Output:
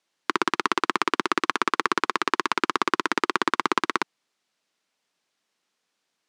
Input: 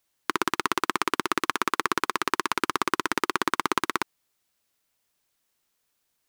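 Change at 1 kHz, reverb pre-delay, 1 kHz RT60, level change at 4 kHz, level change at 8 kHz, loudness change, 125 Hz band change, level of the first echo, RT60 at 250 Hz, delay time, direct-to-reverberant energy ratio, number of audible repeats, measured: +2.5 dB, no reverb audible, no reverb audible, +2.0 dB, −3.0 dB, +2.0 dB, −2.0 dB, no echo audible, no reverb audible, no echo audible, no reverb audible, no echo audible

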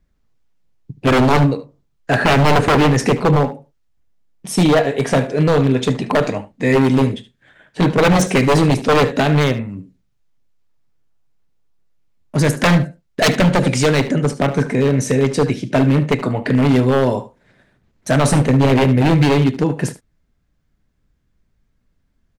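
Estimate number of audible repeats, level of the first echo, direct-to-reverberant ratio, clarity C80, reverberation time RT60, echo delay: 1, −15.5 dB, no reverb audible, no reverb audible, no reverb audible, 74 ms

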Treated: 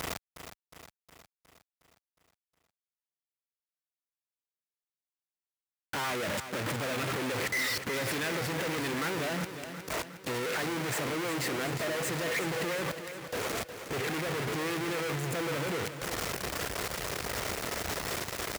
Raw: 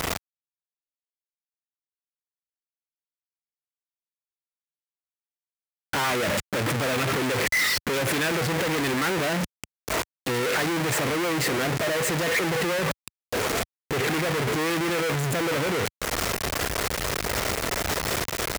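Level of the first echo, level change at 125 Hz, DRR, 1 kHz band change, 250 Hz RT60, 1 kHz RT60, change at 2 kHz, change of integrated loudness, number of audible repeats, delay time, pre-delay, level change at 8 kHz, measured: −10.0 dB, −8.0 dB, no reverb audible, −7.5 dB, no reverb audible, no reverb audible, −7.5 dB, −7.5 dB, 6, 362 ms, no reverb audible, −7.5 dB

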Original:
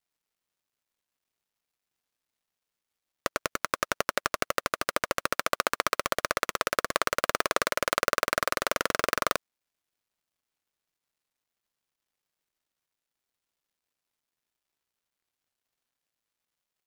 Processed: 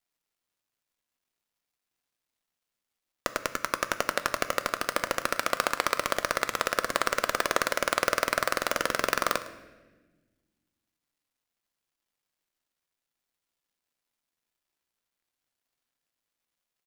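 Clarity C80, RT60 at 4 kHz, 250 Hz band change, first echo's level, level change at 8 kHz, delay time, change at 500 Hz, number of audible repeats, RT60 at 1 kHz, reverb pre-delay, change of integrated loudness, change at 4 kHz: 13.5 dB, 1.0 s, +1.0 dB, −17.5 dB, +0.5 dB, 107 ms, +0.5 dB, 1, 1.1 s, 3 ms, +0.5 dB, +0.5 dB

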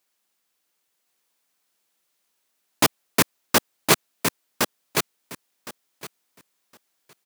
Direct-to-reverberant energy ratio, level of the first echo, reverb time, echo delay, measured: no reverb audible, −4.5 dB, no reverb audible, 1,063 ms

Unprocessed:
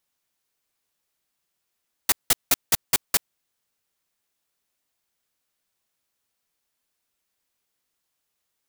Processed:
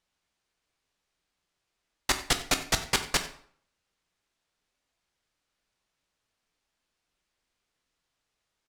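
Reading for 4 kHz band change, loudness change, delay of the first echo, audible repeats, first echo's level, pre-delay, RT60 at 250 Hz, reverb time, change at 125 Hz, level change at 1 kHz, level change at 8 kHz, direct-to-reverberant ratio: 0.0 dB, −5.0 dB, 92 ms, 1, −18.0 dB, 9 ms, 0.60 s, 0.55 s, +4.5 dB, +2.0 dB, −5.0 dB, 6.5 dB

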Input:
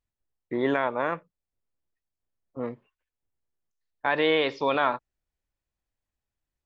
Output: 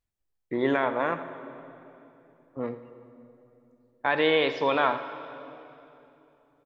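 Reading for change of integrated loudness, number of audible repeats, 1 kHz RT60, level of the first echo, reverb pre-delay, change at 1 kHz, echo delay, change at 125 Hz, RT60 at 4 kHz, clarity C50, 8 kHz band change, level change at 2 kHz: +0.5 dB, 1, 2.8 s, −15.0 dB, 33 ms, +0.5 dB, 84 ms, +0.5 dB, 2.5 s, 10.0 dB, can't be measured, +0.5 dB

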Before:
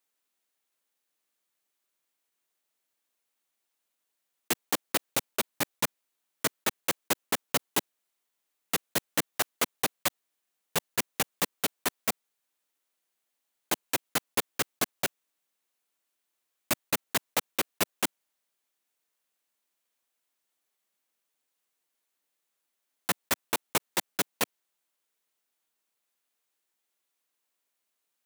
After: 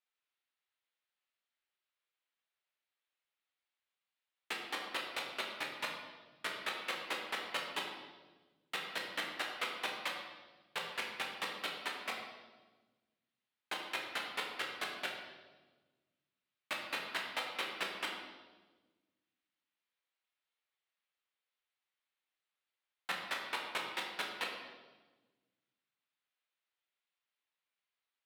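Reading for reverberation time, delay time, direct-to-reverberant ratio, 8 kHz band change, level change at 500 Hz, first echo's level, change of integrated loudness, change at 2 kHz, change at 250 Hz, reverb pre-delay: 1.3 s, no echo audible, −1.0 dB, −19.5 dB, −10.5 dB, no echo audible, −9.0 dB, −4.0 dB, −15.0 dB, 10 ms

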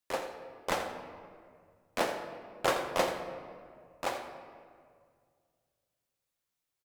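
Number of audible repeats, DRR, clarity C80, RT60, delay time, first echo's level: 1, 4.5 dB, 6.5 dB, 2.0 s, 84 ms, −11.0 dB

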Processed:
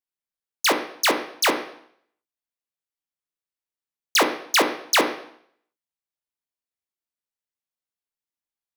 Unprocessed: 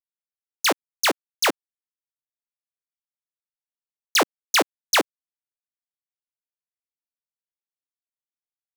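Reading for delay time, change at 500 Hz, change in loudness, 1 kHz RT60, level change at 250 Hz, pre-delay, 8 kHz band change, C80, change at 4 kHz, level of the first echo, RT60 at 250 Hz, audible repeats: no echo audible, +2.0 dB, +0.5 dB, 0.65 s, +2.0 dB, 16 ms, 0.0 dB, 12.5 dB, +0.5 dB, no echo audible, 0.65 s, no echo audible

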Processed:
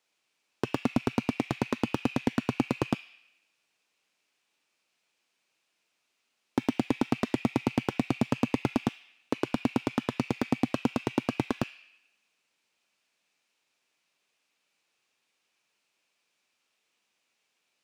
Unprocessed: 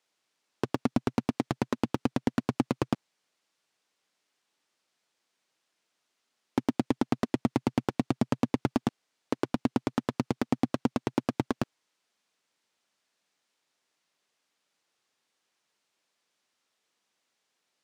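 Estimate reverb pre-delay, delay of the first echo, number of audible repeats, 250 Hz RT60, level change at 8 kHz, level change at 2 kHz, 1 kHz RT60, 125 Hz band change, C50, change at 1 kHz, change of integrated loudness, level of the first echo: 8 ms, no echo audible, no echo audible, 1.5 s, +0.5 dB, +3.5 dB, 0.95 s, 0.0 dB, 5.0 dB, 0.0 dB, 0.0 dB, no echo audible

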